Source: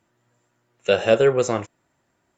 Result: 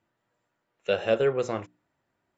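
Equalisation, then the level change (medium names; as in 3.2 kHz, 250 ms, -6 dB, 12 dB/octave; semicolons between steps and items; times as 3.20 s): low-pass 4.8 kHz 12 dB/octave; hum notches 60/120/180/240/300/360 Hz; -7.0 dB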